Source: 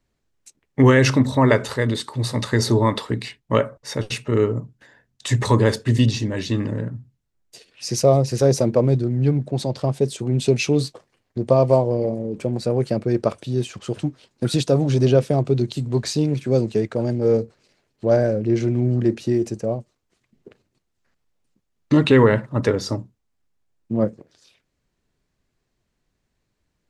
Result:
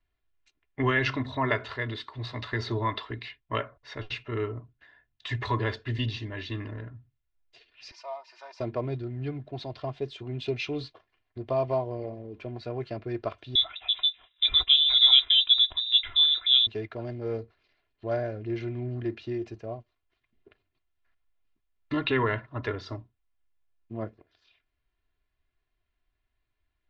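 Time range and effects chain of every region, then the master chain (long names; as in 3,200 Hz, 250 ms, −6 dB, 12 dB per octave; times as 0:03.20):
0:07.91–0:08.60: four-pole ladder high-pass 840 Hz, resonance 65% + parametric band 5,400 Hz +2.5 dB 0.39 octaves + comb filter 3.3 ms, depth 76%
0:13.55–0:16.67: voice inversion scrambler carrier 3,800 Hz + high-shelf EQ 2,000 Hz +7 dB
whole clip: low-pass filter 3,600 Hz 24 dB per octave; parametric band 280 Hz −11.5 dB 2.6 octaves; comb filter 2.9 ms, depth 62%; level −5 dB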